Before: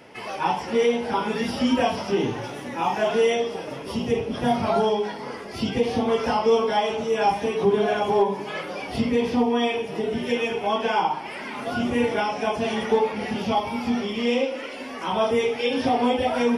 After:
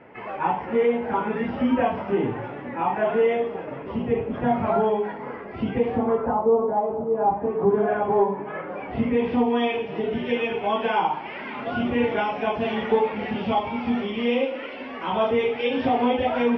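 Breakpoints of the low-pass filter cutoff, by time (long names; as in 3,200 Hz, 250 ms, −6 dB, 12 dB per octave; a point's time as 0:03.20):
low-pass filter 24 dB per octave
0:05.87 2,200 Hz
0:06.47 1,000 Hz
0:07.11 1,000 Hz
0:07.93 1,800 Hz
0:08.64 1,800 Hz
0:09.50 3,200 Hz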